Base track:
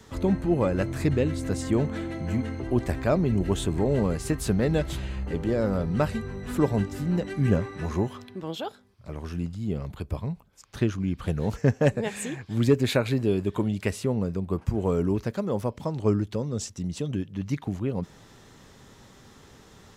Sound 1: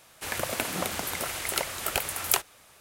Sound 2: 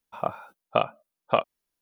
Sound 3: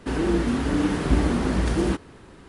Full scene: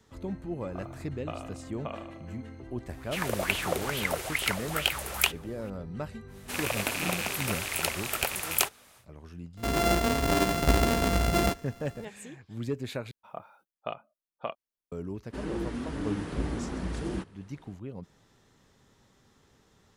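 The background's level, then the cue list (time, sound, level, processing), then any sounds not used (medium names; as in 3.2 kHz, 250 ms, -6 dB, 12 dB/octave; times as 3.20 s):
base track -12 dB
0.52 s: add 2 -17 dB + feedback delay 75 ms, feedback 55%, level -4 dB
2.90 s: add 1 -5.5 dB + sweeping bell 2.3 Hz 390–3200 Hz +15 dB
6.27 s: add 1 -1.5 dB, fades 0.10 s + rattle on loud lows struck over -44 dBFS, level -19 dBFS
9.57 s: add 3 -3 dB + sorted samples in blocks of 64 samples
13.11 s: replace with 2 -13 dB
15.27 s: add 3 -11.5 dB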